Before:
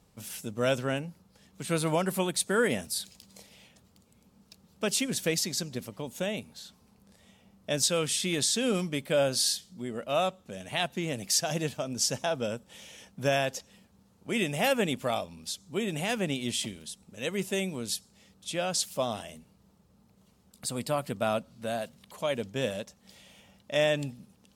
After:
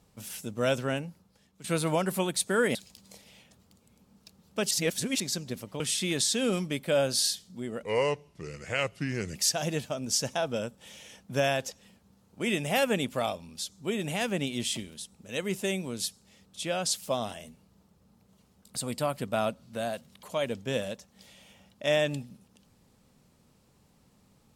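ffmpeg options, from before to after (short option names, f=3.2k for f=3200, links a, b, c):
-filter_complex "[0:a]asplit=8[a][b][c][d][e][f][g][h];[a]atrim=end=1.64,asetpts=PTS-STARTPTS,afade=t=out:st=1.03:d=0.61:silence=0.251189[i];[b]atrim=start=1.64:end=2.752,asetpts=PTS-STARTPTS,afade=t=in:d=0.004:c=hsin:silence=0.251189[j];[c]atrim=start=2.998:end=4.962[k];[d]atrim=start=4.958:end=5.452,asetpts=PTS-STARTPTS,areverse[l];[e]atrim=start=5.448:end=6.052[m];[f]atrim=start=8.018:end=10.054[n];[g]atrim=start=10.05:end=11.24,asetpts=PTS-STARTPTS,asetrate=34398,aresample=44100[o];[h]atrim=start=11.236[p];[i][j]concat=n=2:v=0:a=1[q];[q][k]acrossfade=d=0.004:c1=hsin:c2=hsin[r];[r][l]acrossfade=d=0.004:c1=hsin:c2=hsin[s];[s][m]acrossfade=d=0.004:c1=hsin:c2=hsin[t];[t][n]acrossfade=d=0.004:c1=hsin:c2=hsin[u];[u][o]acrossfade=d=0.004:c1=hsin:c2=hsin[v];[v][p]acrossfade=d=0.004:c1=hsin:c2=hsin"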